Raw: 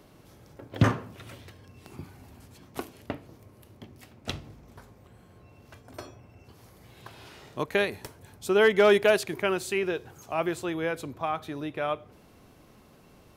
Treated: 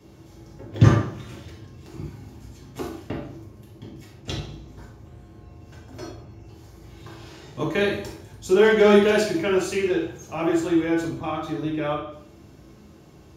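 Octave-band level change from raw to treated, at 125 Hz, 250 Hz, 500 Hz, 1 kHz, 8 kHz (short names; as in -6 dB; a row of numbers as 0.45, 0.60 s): +9.5, +9.0, +4.5, +2.5, +4.0 dB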